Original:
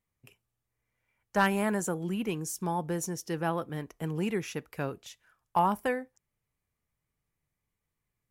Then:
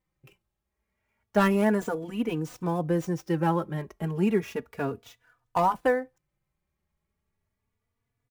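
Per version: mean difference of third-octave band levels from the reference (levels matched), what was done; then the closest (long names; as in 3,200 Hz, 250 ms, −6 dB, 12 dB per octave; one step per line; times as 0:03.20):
4.0 dB: gap after every zero crossing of 0.055 ms
high-shelf EQ 2,400 Hz −8.5 dB
hard clipping −17.5 dBFS, distortion −28 dB
barber-pole flanger 3.4 ms +0.32 Hz
level +8 dB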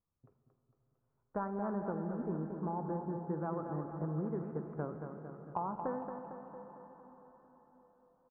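13.5 dB: Butterworth low-pass 1,400 Hz 48 dB per octave
downward compressor, threshold −30 dBFS, peak gain reduction 9.5 dB
on a send: repeating echo 227 ms, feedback 56%, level −7.5 dB
on the sum: dense smooth reverb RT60 5 s, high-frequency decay 0.8×, DRR 7 dB
level −4 dB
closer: first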